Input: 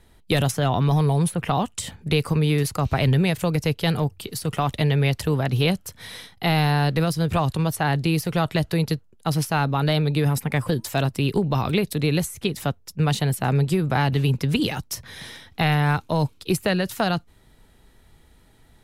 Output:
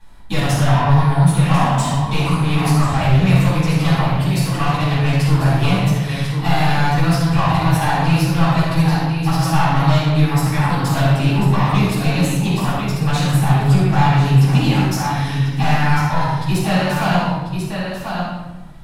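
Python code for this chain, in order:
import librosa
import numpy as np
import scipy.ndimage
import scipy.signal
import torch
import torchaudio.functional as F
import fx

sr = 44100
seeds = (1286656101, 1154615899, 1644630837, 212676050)

p1 = fx.graphic_eq_15(x, sr, hz=(400, 1000, 6300), db=(-8, 9, 3))
p2 = p1 + fx.echo_single(p1, sr, ms=1043, db=-9.0, dry=0)
p3 = 10.0 ** (-19.5 / 20.0) * np.tanh(p2 / 10.0 ** (-19.5 / 20.0))
p4 = fx.high_shelf(p3, sr, hz=10000.0, db=-4.5)
p5 = fx.room_shoebox(p4, sr, seeds[0], volume_m3=630.0, walls='mixed', distance_m=8.9)
y = p5 * librosa.db_to_amplitude(-8.0)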